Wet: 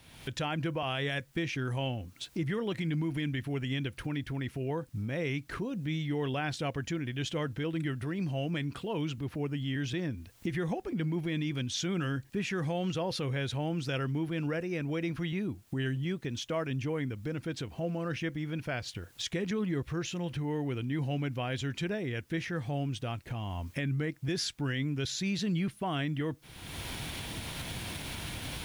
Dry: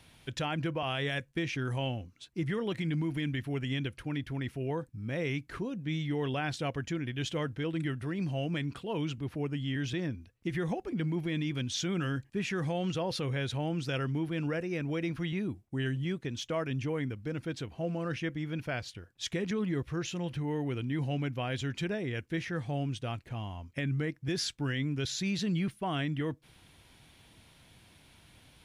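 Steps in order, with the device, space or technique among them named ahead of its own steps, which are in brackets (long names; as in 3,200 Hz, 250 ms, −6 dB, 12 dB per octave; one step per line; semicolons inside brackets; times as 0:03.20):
cheap recorder with automatic gain (white noise bed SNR 39 dB; camcorder AGC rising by 41 dB per second)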